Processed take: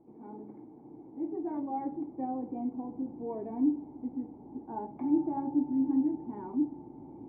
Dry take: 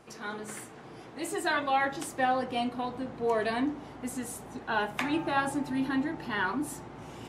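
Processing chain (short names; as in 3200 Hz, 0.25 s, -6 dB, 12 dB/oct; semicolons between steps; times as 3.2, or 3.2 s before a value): vocal tract filter u; gain +5.5 dB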